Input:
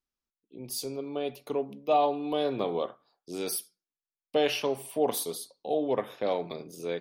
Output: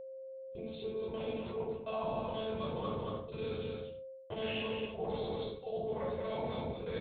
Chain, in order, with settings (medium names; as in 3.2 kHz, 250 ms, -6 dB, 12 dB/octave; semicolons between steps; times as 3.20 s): time reversed locally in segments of 52 ms; bass shelf 380 Hz -5.5 dB; monotone LPC vocoder at 8 kHz 220 Hz; simulated room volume 760 m³, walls furnished, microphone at 5.1 m; gate with hold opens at -35 dBFS; high-pass 62 Hz; on a send: delay 231 ms -9 dB; on the sum: whistle 530 Hz -44 dBFS; reverse; compression 5:1, threshold -36 dBFS, peak gain reduction 17.5 dB; reverse